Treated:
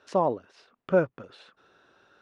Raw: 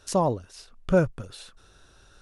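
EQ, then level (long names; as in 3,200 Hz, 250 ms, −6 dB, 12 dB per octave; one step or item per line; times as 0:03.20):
band-pass filter 250–2,500 Hz
0.0 dB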